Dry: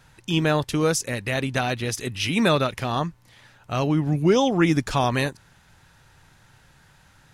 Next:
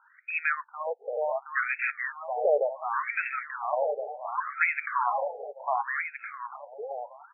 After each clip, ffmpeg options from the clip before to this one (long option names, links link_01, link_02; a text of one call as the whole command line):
ffmpeg -i in.wav -filter_complex "[0:a]equalizer=frequency=2200:width=2.5:gain=5.5,asplit=2[link_01][link_02];[link_02]aecho=0:1:720|1368|1951|2476|2948:0.631|0.398|0.251|0.158|0.1[link_03];[link_01][link_03]amix=inputs=2:normalize=0,afftfilt=real='re*between(b*sr/1024,580*pow(1900/580,0.5+0.5*sin(2*PI*0.69*pts/sr))/1.41,580*pow(1900/580,0.5+0.5*sin(2*PI*0.69*pts/sr))*1.41)':imag='im*between(b*sr/1024,580*pow(1900/580,0.5+0.5*sin(2*PI*0.69*pts/sr))/1.41,580*pow(1900/580,0.5+0.5*sin(2*PI*0.69*pts/sr))*1.41)':win_size=1024:overlap=0.75" out.wav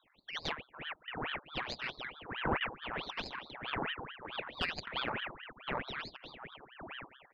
ffmpeg -i in.wav -af "flanger=delay=6.3:depth=1.8:regen=86:speed=2:shape=sinusoidal,aeval=exprs='(tanh(10*val(0)+0.75)-tanh(0.75))/10':channel_layout=same,aeval=exprs='val(0)*sin(2*PI*1300*n/s+1300*0.9/4.6*sin(2*PI*4.6*n/s))':channel_layout=same,volume=1.5dB" out.wav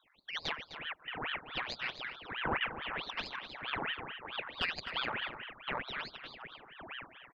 ffmpeg -i in.wav -filter_complex "[0:a]equalizer=frequency=2400:width=0.39:gain=6,asplit=2[link_01][link_02];[link_02]aecho=0:1:255:0.266[link_03];[link_01][link_03]amix=inputs=2:normalize=0,volume=-4dB" out.wav